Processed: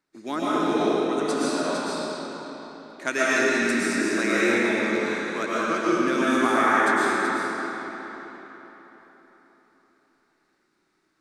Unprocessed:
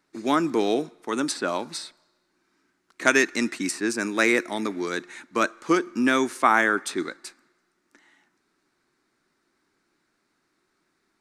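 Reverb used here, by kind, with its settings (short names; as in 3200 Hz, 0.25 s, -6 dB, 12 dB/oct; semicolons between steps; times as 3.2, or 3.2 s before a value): digital reverb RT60 4.1 s, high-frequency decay 0.75×, pre-delay 80 ms, DRR -9.5 dB; gain -8.5 dB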